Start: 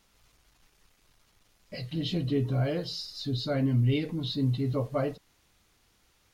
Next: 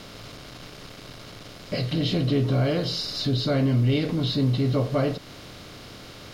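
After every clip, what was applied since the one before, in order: per-bin compression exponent 0.6; in parallel at +2 dB: compressor, threshold -34 dBFS, peak gain reduction 13.5 dB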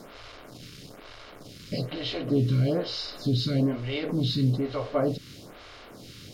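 photocell phaser 1.1 Hz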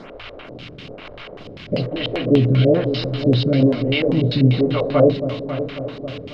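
multi-head echo 0.272 s, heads first and second, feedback 58%, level -13 dB; LFO low-pass square 5.1 Hz 540–2800 Hz; gain +7.5 dB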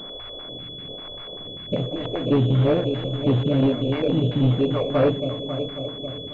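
hard clip -10.5 dBFS, distortion -15 dB; pulse-width modulation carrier 3400 Hz; gain -3 dB

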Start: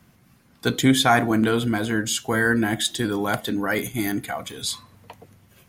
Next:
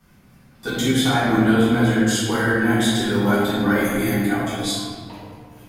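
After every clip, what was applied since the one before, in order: limiter -14.5 dBFS, peak gain reduction 9 dB; reverb RT60 1.9 s, pre-delay 4 ms, DRR -12 dB; gain -7 dB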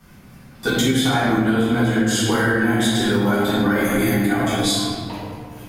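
compressor, threshold -22 dBFS, peak gain reduction 10 dB; gain +7 dB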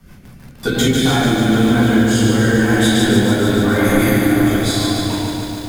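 low shelf 81 Hz +8 dB; rotary speaker horn 6 Hz, later 0.9 Hz, at 0.51; lo-fi delay 0.146 s, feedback 80%, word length 7-bit, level -5 dB; gain +3.5 dB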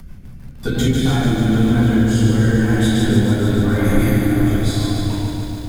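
low shelf 250 Hz +7.5 dB; upward compressor, threshold -31 dBFS; low shelf 84 Hz +9.5 dB; gain -7 dB

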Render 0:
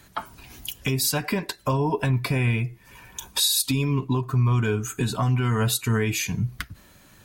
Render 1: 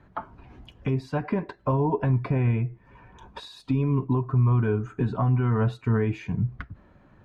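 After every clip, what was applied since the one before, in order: LPF 1200 Hz 12 dB/oct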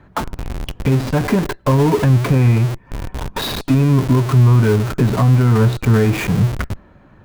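dynamic EQ 790 Hz, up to -5 dB, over -42 dBFS, Q 1.4; in parallel at -6 dB: Schmitt trigger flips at -43.5 dBFS; on the sum: gain +8.5 dB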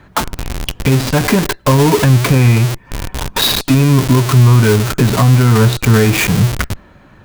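high shelf 2100 Hz +10.5 dB; gain +3 dB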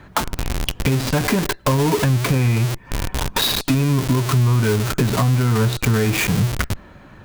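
compressor 2.5:1, threshold -18 dBFS, peak gain reduction 9 dB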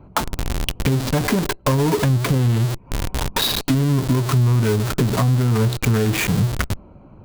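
Wiener smoothing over 25 samples

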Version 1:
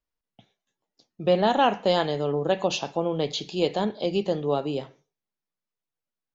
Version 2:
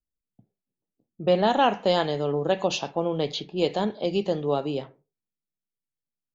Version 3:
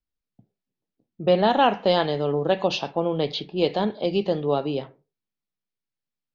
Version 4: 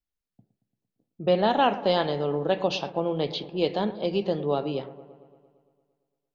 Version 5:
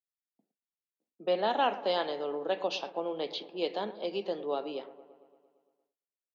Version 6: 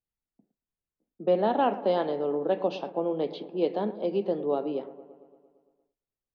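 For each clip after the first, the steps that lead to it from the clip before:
low-pass opened by the level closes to 300 Hz, open at -21.5 dBFS
steep low-pass 5400 Hz 36 dB/oct; gain +2 dB
dark delay 0.114 s, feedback 66%, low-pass 1500 Hz, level -15 dB; gain -3 dB
gate with hold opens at -58 dBFS; Bessel high-pass 360 Hz, order 8; gain -5 dB
tilt -4.5 dB/oct; gain +1 dB

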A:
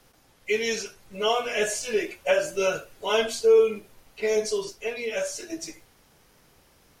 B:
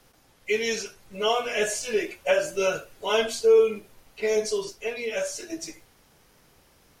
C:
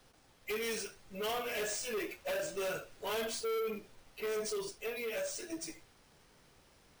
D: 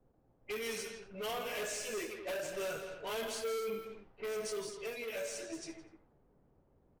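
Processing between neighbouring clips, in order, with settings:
nothing audible
sample-and-hold 3×; soft clip -28 dBFS, distortion -5 dB; gain -5 dB
loudspeakers at several distances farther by 57 m -9 dB, 86 m -11 dB; low-pass opened by the level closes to 490 Hz, open at -35 dBFS; gain -2.5 dB

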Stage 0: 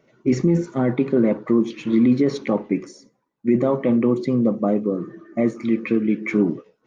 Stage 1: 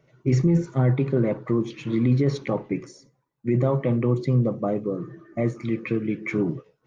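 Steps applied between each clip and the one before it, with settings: resonant low shelf 170 Hz +6 dB, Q 3; gain -3 dB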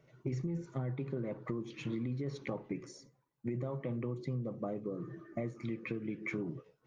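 compressor 6:1, threshold -31 dBFS, peak gain reduction 15 dB; gain -4 dB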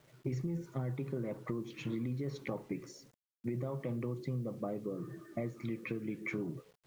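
bit-crush 11-bit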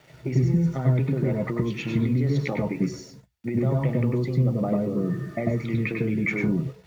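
reverb RT60 0.10 s, pre-delay 96 ms, DRR 3 dB; gain +5 dB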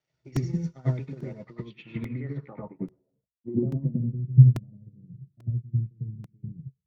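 low-pass sweep 5800 Hz -> 120 Hz, 1.36–4.4; crackling interface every 0.84 s, samples 128, repeat, from 0.36; upward expander 2.5:1, over -35 dBFS; gain +4.5 dB

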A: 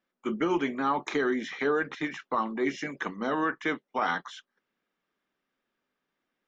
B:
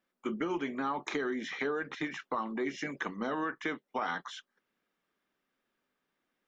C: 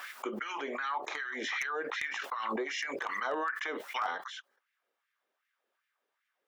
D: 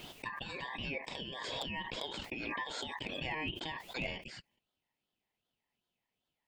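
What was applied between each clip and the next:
compressor 3:1, threshold -32 dBFS, peak gain reduction 7.5 dB
LFO high-pass sine 2.6 Hz 450–2000 Hz; wavefolder -21.5 dBFS; backwards sustainer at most 21 dB/s; gain -3 dB
ring modulator 1400 Hz; gain -2 dB

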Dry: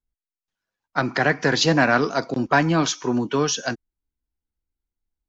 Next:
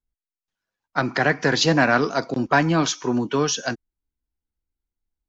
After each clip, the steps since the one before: nothing audible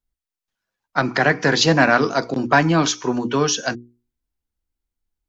notches 60/120/180/240/300/360/420/480 Hz; gain +3 dB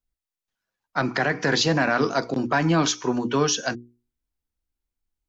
limiter -8 dBFS, peak gain reduction 6.5 dB; gain -2.5 dB

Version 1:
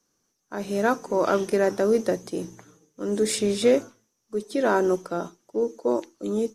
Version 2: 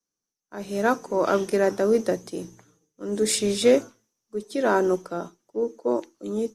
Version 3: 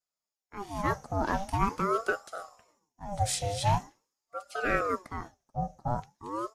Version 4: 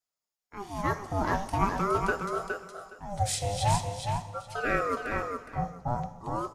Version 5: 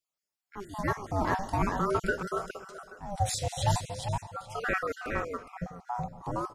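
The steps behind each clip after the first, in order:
three-band expander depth 40%
flange 0.96 Hz, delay 1.7 ms, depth 3.8 ms, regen +70%; ring modulator with a swept carrier 640 Hz, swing 55%, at 0.44 Hz
on a send: feedback echo 0.415 s, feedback 17%, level -5 dB; on the sum: non-linear reverb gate 0.43 s falling, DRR 12 dB
random spectral dropouts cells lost 27%

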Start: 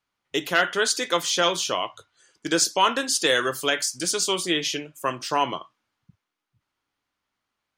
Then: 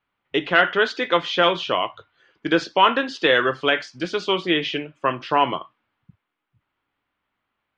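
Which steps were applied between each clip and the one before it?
LPF 3200 Hz 24 dB/oct; gain +4.5 dB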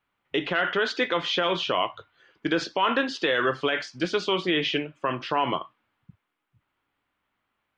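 limiter -13.5 dBFS, peak gain reduction 10 dB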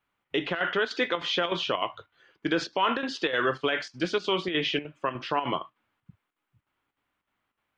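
chopper 3.3 Hz, depth 60%, duty 80%; gain -1.5 dB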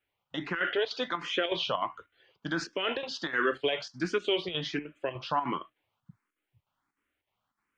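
endless phaser +1.4 Hz

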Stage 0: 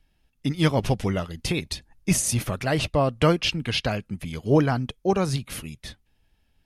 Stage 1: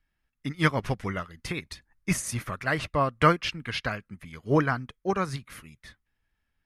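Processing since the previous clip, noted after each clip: band shelf 1500 Hz +9.5 dB 1.3 oct; upward expander 1.5:1, over -32 dBFS; gain -2.5 dB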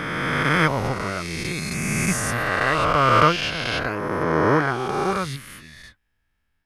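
spectral swells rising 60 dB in 3.00 s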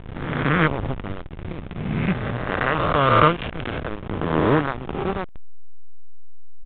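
backlash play -15 dBFS; downsampling 8000 Hz; gain +2 dB

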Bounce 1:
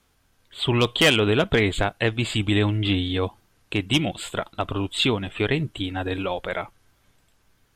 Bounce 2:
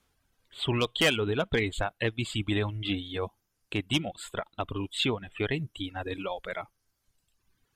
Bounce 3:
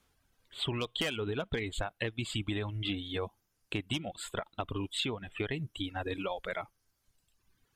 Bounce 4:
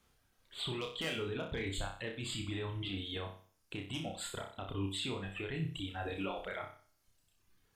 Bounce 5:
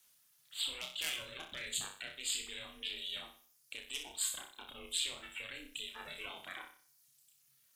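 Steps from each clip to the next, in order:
reverb removal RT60 1.2 s; gain -6 dB
compressor 10:1, threshold -30 dBFS, peak gain reduction 11 dB
limiter -29.5 dBFS, peak gain reduction 11 dB; on a send: flutter echo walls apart 5.3 m, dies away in 0.44 s; on the sum: gain -1.5 dB
ring modulator 220 Hz; frequency shift -83 Hz; pre-emphasis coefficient 0.97; gain +12.5 dB

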